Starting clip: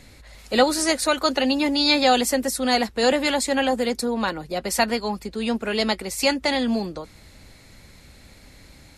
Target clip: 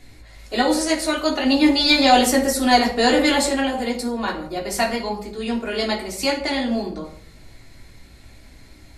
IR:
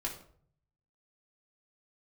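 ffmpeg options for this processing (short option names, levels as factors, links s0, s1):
-filter_complex "[0:a]asettb=1/sr,asplit=3[s0][s1][s2];[s0]atrim=end=1.454[s3];[s1]atrim=start=1.45:end=3.49,asetpts=PTS-STARTPTS,afade=t=in:d=0.004:c=qsin,afade=t=out:st=2.036:d=0.004:c=qsin,acontrast=25[s4];[s2]atrim=start=3.486[s5];[s3][s4]acrossfade=d=0.004:c1=hsin:c2=qsin[s6];[s6][s5]acrossfade=d=0.004:c1=qsin:c2=hsin[s7];[1:a]atrim=start_sample=2205[s8];[s7][s8]afir=irnorm=-1:irlink=0,volume=0.794"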